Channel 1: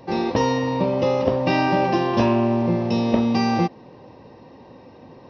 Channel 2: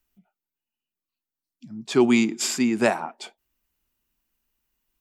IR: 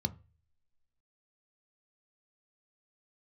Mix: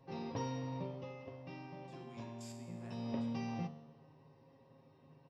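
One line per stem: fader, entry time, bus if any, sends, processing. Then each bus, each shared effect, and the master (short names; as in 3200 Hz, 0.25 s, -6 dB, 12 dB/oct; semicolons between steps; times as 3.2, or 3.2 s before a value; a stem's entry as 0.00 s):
0.77 s -8.5 dB -> 1.16 s -19 dB -> 2.65 s -19 dB -> 3.09 s -9.5 dB, 0.00 s, send -18 dB, comb 7.3 ms, depth 63%
-16.0 dB, 0.00 s, no send, level quantiser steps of 14 dB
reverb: on, RT60 0.35 s, pre-delay 3 ms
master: resonator 77 Hz, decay 1.2 s, harmonics all, mix 80%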